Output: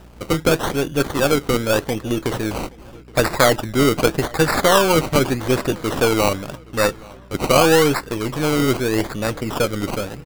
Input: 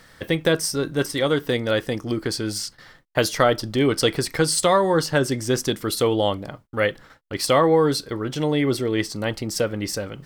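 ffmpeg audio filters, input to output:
-filter_complex "[0:a]aeval=exprs='if(lt(val(0),0),0.708*val(0),val(0))':c=same,aeval=exprs='val(0)+0.00398*(sin(2*PI*60*n/s)+sin(2*PI*2*60*n/s)/2+sin(2*PI*3*60*n/s)/3+sin(2*PI*4*60*n/s)/4+sin(2*PI*5*60*n/s)/5)':c=same,acrusher=samples=20:mix=1:aa=0.000001:lfo=1:lforange=12:lforate=0.84,asplit=2[s0][s1];[s1]adelay=822,lowpass=f=4800:p=1,volume=0.0668,asplit=2[s2][s3];[s3]adelay=822,lowpass=f=4800:p=1,volume=0.49,asplit=2[s4][s5];[s5]adelay=822,lowpass=f=4800:p=1,volume=0.49[s6];[s2][s4][s6]amix=inputs=3:normalize=0[s7];[s0][s7]amix=inputs=2:normalize=0,volume=1.68"

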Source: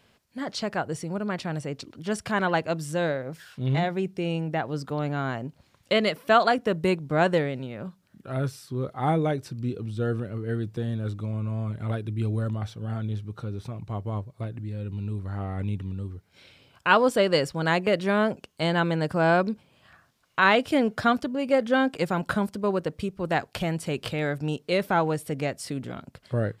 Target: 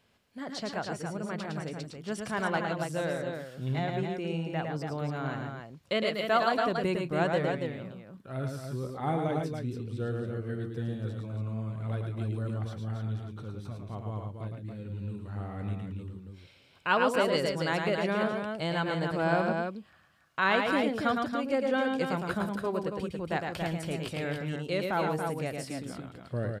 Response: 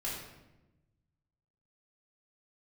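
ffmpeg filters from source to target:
-af "aecho=1:1:109|120|143|280|286:0.596|0.15|0.112|0.501|0.106,volume=0.447"

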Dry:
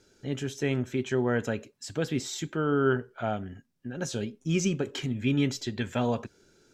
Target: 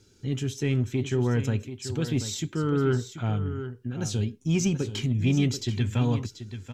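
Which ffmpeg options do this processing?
-filter_complex "[0:a]equalizer=f=100:t=o:w=0.67:g=11,equalizer=f=630:t=o:w=0.67:g=-12,equalizer=f=1600:t=o:w=0.67:g=-7,asplit=2[s0][s1];[s1]asoftclip=type=tanh:threshold=0.0631,volume=0.668[s2];[s0][s2]amix=inputs=2:normalize=0,aecho=1:1:734:0.282,volume=0.841"

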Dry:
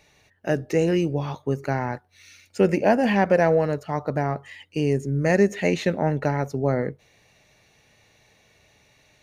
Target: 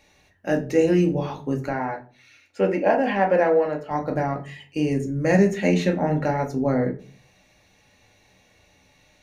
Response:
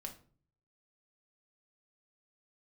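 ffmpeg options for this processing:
-filter_complex "[0:a]asettb=1/sr,asplit=3[s0][s1][s2];[s0]atrim=end=1.694[s3];[s1]atrim=start=1.69:end=3.91,asetpts=PTS-STARTPTS,afade=t=in:d=0.004:c=qsin,afade=t=out:st=2.216:d=0.004:c=qsin,bass=f=250:g=-12,treble=f=4000:g=-12[s4];[s2]atrim=start=3.906[s5];[s3][s4]acrossfade=d=0.004:c1=hsin:c2=qsin[s6];[s6][s5]acrossfade=d=0.004:c1=qsin:c2=hsin[s7];[1:a]atrim=start_sample=2205,asetrate=57330,aresample=44100[s8];[s7][s8]afir=irnorm=-1:irlink=0,volume=2"

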